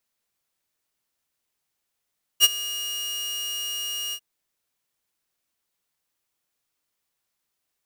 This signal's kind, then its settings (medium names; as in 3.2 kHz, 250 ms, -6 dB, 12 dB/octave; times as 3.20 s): ADSR saw 2.86 kHz, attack 43 ms, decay 30 ms, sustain -18 dB, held 1.73 s, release 65 ms -7.5 dBFS